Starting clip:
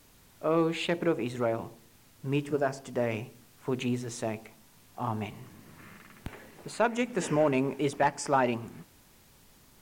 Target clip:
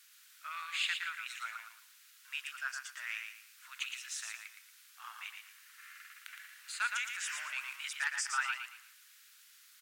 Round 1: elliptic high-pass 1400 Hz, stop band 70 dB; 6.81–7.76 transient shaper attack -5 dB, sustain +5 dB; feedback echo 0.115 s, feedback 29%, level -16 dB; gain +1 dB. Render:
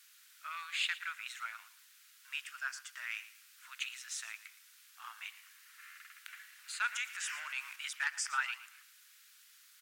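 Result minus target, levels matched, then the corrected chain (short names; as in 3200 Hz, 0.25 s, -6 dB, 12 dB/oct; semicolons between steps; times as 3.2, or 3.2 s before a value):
echo-to-direct -10.5 dB
elliptic high-pass 1400 Hz, stop band 70 dB; 6.81–7.76 transient shaper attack -5 dB, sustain +5 dB; feedback echo 0.115 s, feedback 29%, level -5.5 dB; gain +1 dB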